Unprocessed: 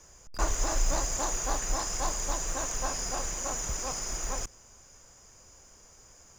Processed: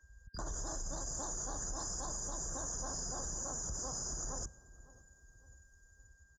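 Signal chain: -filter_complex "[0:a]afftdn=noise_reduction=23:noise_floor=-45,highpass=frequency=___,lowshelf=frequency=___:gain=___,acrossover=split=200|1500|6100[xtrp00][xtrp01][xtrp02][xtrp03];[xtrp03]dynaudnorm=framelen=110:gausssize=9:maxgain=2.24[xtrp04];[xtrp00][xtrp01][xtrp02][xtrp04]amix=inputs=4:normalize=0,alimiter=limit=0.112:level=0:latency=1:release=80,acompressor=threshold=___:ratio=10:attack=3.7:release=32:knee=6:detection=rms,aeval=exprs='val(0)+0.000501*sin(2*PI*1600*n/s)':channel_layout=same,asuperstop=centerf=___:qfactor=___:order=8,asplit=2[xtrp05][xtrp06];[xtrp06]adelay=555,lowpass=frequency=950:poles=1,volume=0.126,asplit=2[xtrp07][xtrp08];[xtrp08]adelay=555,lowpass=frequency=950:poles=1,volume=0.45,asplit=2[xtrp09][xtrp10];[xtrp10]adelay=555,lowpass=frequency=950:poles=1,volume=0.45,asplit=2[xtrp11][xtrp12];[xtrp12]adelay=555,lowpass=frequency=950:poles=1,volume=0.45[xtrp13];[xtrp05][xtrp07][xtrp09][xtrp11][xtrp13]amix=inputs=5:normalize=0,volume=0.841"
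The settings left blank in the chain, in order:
54, 270, 11, 0.0158, 2400, 1.6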